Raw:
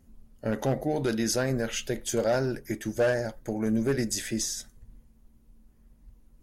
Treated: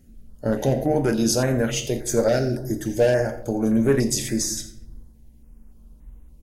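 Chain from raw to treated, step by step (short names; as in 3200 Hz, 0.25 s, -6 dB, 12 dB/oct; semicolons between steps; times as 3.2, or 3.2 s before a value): 2.39–2.79 band shelf 1400 Hz -8.5 dB 2.9 oct; on a send: echo 86 ms -16 dB; on the sum: shoebox room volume 170 m³, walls mixed, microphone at 0.41 m; stepped notch 3.5 Hz 980–4800 Hz; gain +6 dB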